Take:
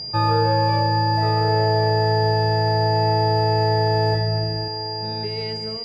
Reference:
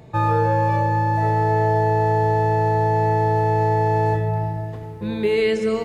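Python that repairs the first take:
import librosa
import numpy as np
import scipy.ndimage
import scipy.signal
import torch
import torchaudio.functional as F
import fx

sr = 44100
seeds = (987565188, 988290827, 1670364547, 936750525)

y = fx.notch(x, sr, hz=4800.0, q=30.0)
y = fx.fix_echo_inverse(y, sr, delay_ms=1088, level_db=-11.5)
y = fx.fix_level(y, sr, at_s=4.68, step_db=12.0)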